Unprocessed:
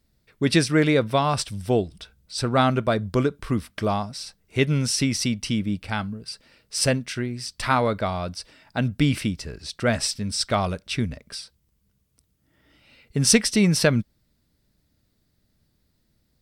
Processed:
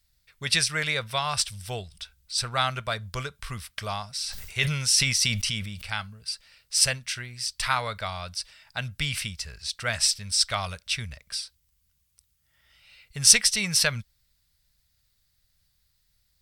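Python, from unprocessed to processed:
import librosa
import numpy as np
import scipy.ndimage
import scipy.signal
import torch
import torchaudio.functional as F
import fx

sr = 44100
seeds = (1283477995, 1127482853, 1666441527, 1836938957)

y = fx.tone_stack(x, sr, knobs='10-0-10')
y = fx.sustainer(y, sr, db_per_s=42.0, at=(4.2, 5.88))
y = y * 10.0 ** (4.5 / 20.0)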